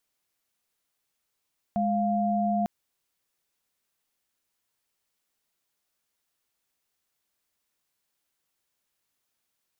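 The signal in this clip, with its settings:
held notes G#3/F5 sine, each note −25.5 dBFS 0.90 s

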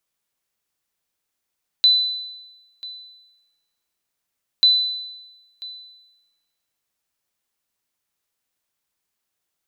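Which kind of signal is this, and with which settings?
ping with an echo 4,000 Hz, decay 1.09 s, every 2.79 s, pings 2, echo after 0.99 s, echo −20.5 dB −8.5 dBFS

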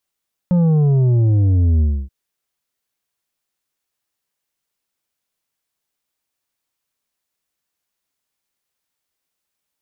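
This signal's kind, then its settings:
bass drop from 180 Hz, over 1.58 s, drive 7 dB, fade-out 0.28 s, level −12 dB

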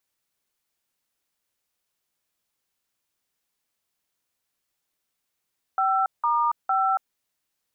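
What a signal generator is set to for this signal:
touch tones "5*5", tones 280 ms, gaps 176 ms, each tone −22 dBFS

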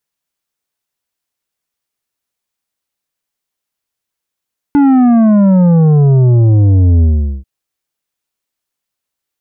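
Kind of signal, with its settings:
bass drop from 290 Hz, over 2.69 s, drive 8.5 dB, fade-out 0.42 s, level −6 dB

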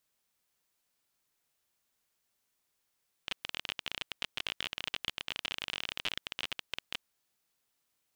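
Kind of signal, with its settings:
Geiger counter clicks 30 per second −17.5 dBFS 3.75 s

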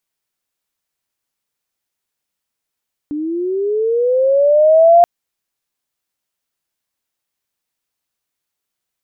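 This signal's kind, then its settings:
glide linear 290 Hz → 700 Hz −19 dBFS → −4 dBFS 1.93 s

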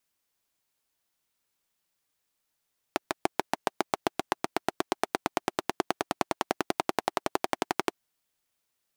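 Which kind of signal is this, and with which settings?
pulse-train model of a single-cylinder engine, changing speed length 4.97 s, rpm 800, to 1,400, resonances 370/700 Hz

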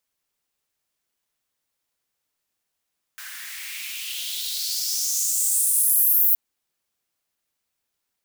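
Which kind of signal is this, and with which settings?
filter sweep on noise white, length 3.17 s highpass, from 1,500 Hz, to 15,000 Hz, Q 3.9, exponential, gain ramp +20 dB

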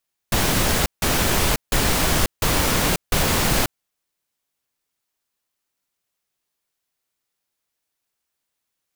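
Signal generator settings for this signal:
noise bursts pink, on 0.54 s, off 0.16 s, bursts 5, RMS −19 dBFS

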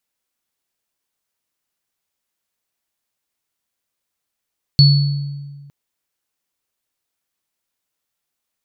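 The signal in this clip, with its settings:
inharmonic partials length 0.91 s, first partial 142 Hz, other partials 4,420 Hz, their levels −4 dB, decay 1.63 s, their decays 0.83 s, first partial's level −5.5 dB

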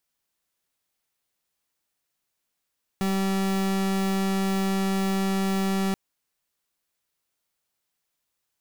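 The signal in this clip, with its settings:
pulse wave 193 Hz, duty 37% −24.5 dBFS 2.93 s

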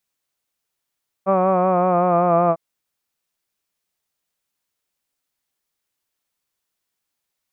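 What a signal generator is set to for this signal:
vowel by formant synthesis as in hud, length 1.30 s, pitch 190 Hz, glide −2 semitones, vibrato depth 0.45 semitones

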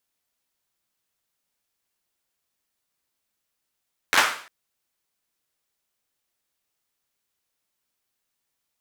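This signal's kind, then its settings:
synth clap length 0.35 s, bursts 5, apart 11 ms, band 1,400 Hz, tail 0.49 s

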